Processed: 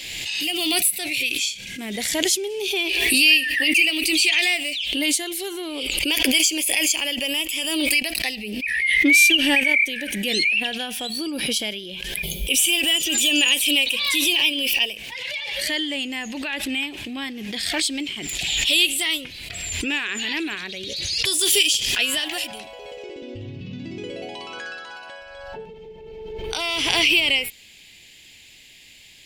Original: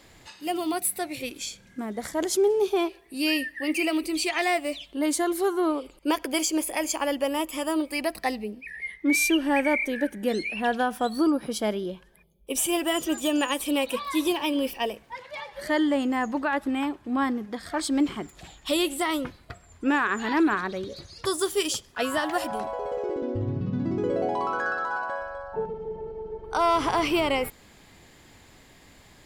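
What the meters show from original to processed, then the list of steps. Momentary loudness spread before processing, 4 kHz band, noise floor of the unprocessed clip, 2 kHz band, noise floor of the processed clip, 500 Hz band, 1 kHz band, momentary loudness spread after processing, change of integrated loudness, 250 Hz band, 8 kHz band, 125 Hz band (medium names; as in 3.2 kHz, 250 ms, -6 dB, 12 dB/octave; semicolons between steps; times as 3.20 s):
12 LU, +14.5 dB, -55 dBFS, +10.0 dB, -48 dBFS, -5.0 dB, -8.5 dB, 18 LU, +7.0 dB, -2.0 dB, +10.0 dB, -2.0 dB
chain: resonant high shelf 1.8 kHz +13.5 dB, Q 3; swell ahead of each attack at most 26 dB/s; trim -7 dB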